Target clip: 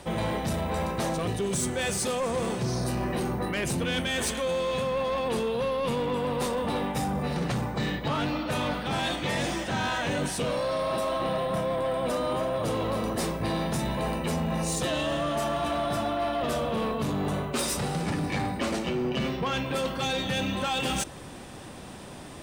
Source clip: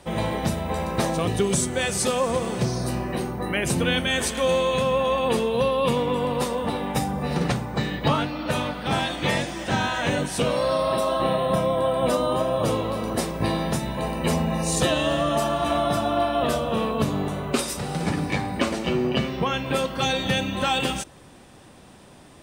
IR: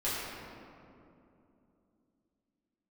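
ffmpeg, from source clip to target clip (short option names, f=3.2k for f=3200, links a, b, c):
-af "areverse,acompressor=threshold=-29dB:ratio=6,areverse,asoftclip=type=tanh:threshold=-28.5dB,volume=6dB"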